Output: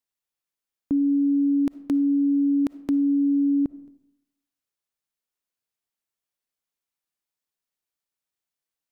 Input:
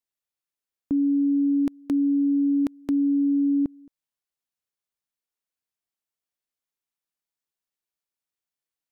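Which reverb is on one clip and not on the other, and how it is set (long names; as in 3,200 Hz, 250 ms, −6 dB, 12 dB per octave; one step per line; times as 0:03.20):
comb and all-pass reverb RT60 0.81 s, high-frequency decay 0.65×, pre-delay 15 ms, DRR 16.5 dB
level +1 dB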